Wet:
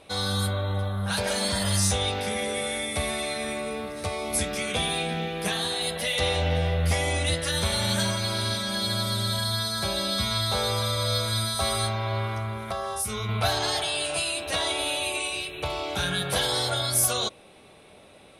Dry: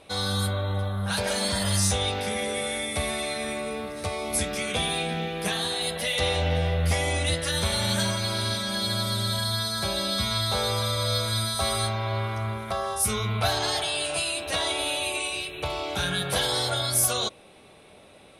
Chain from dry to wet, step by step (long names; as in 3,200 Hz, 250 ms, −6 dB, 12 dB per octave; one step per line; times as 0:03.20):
0:12.38–0:13.29: downward compressor 4 to 1, threshold −27 dBFS, peak gain reduction 6.5 dB